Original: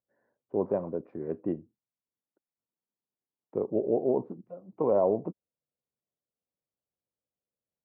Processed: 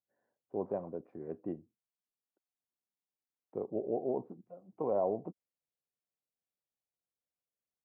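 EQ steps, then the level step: bell 740 Hz +6 dB 0.25 oct; -8.0 dB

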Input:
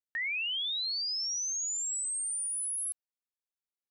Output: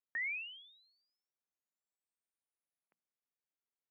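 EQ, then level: elliptic band-pass 170–2400 Hz, stop band 40 dB; air absorption 460 m; notches 60/120/180/240 Hz; +1.0 dB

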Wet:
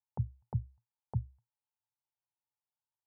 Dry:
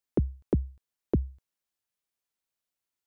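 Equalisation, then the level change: double band-pass 320 Hz, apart 2.9 oct; air absorption 450 m; +5.5 dB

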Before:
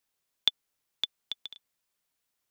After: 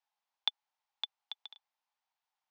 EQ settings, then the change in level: resonant high-pass 830 Hz, resonance Q 6; air absorption 200 m; high shelf 3500 Hz +10.5 dB; -8.0 dB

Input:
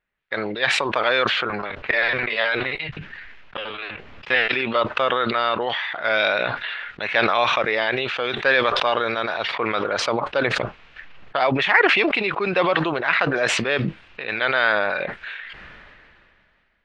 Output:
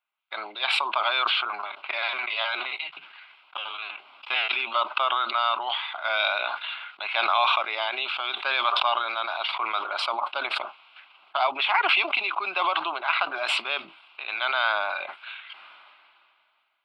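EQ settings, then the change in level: HPF 460 Hz 24 dB/oct; fixed phaser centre 1800 Hz, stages 6; 0.0 dB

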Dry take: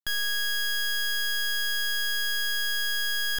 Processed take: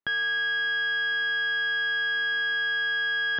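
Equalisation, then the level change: HPF 150 Hz; LPF 3400 Hz 12 dB/oct; air absorption 330 m; +7.5 dB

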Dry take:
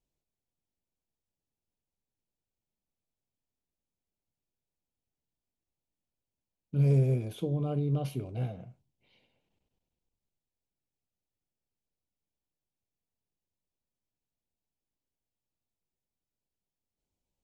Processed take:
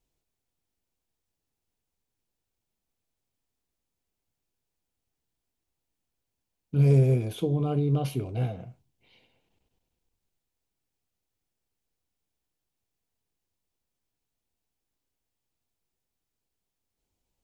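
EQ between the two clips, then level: bell 180 Hz -3.5 dB 1 oct; notch 580 Hz, Q 12; +6.5 dB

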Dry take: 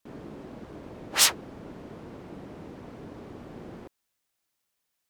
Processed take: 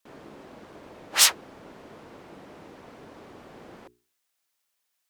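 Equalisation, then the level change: low shelf 380 Hz -11.5 dB; notches 60/120/180/240/300/360/420 Hz; +2.5 dB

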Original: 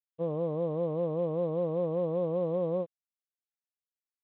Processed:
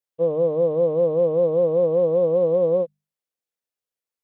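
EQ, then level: bell 500 Hz +9 dB 0.54 oct; notches 50/100/150/200 Hz; +4.0 dB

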